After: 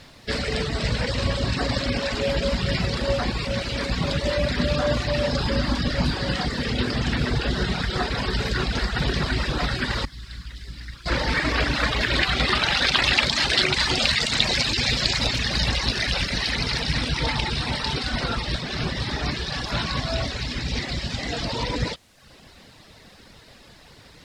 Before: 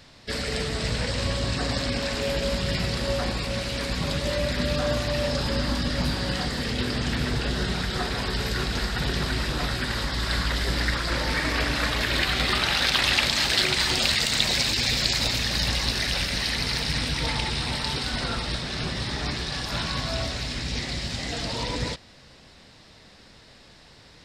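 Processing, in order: reverb removal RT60 0.77 s; 10.05–11.06 s: amplifier tone stack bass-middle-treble 6-0-2; added noise blue -56 dBFS; distance through air 69 m; trim +5 dB

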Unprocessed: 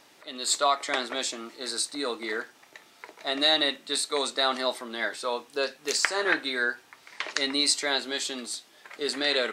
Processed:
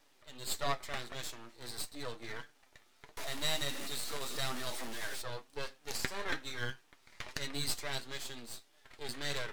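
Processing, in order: 3.17–5.22 s: one-bit delta coder 64 kbps, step -23 dBFS; half-wave rectifier; flange 1.6 Hz, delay 6.5 ms, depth 2.3 ms, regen +51%; trim -4 dB

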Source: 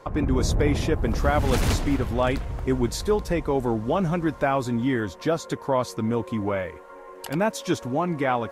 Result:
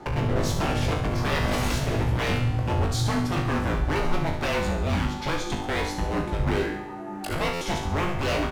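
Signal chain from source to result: treble shelf 4.4 kHz -7 dB; in parallel at +1 dB: compression, threshold -29 dBFS, peak gain reduction 12.5 dB; on the sum: wavefolder -20 dBFS; feedback comb 52 Hz, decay 0.47 s, harmonics all, mix 90%; frequency shift -170 Hz; on a send: feedback delay 69 ms, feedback 54%, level -9 dB; on the sum: buffer glitch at 7.53 s, samples 512, times 6; trim +8 dB

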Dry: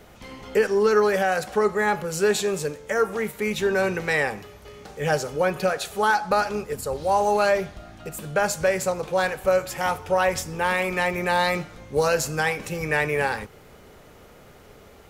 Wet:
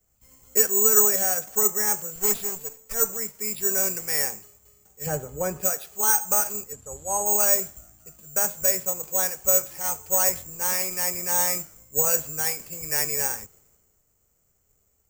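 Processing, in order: 2.15–3.09 s: comb filter that takes the minimum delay 4.4 ms; careless resampling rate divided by 6×, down filtered, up zero stuff; 5.06–5.61 s: tilt EQ -2 dB/octave; 6.72–7.26 s: low-pass 12 kHz 24 dB/octave; three bands expanded up and down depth 70%; trim -9 dB

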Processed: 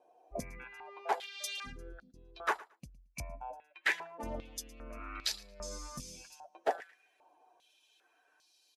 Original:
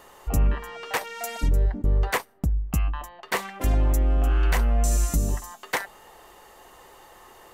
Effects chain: expander on every frequency bin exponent 1.5; peaking EQ 1.3 kHz -13.5 dB 2.3 oct; tape speed -14%; on a send: feedback delay 112 ms, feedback 17%, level -20.5 dB; on the sum: step-sequenced band-pass 2.5 Hz 680–4400 Hz; trim +15 dB

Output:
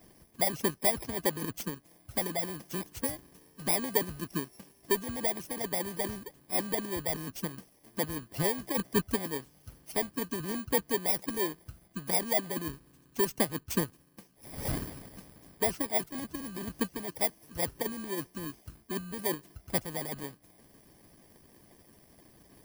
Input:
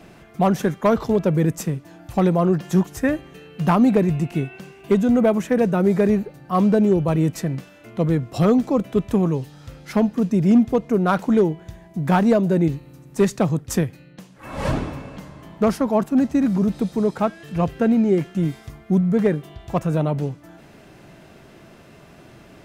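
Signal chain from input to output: bit-reversed sample order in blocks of 32 samples; harmonic-percussive split harmonic -17 dB; trim -6.5 dB

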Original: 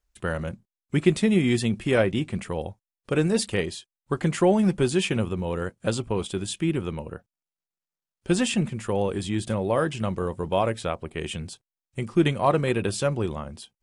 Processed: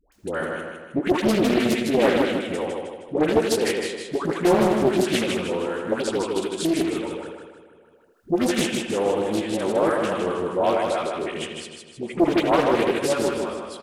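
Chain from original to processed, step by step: wavefolder -12.5 dBFS; on a send: feedback delay 156 ms, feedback 46%, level -4 dB; on the sum: upward compressor, threshold -41 dBFS; resonant low shelf 190 Hz -12 dB, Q 1.5; phase dispersion highs, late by 123 ms, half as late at 720 Hz; speakerphone echo 80 ms, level -7 dB; loudspeaker Doppler distortion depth 0.54 ms; trim +1 dB

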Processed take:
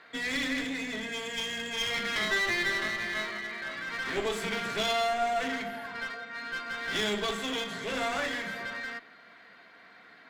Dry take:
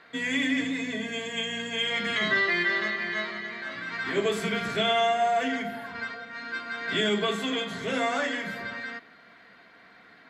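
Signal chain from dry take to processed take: bass shelf 250 Hz -7 dB; one-sided clip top -35 dBFS

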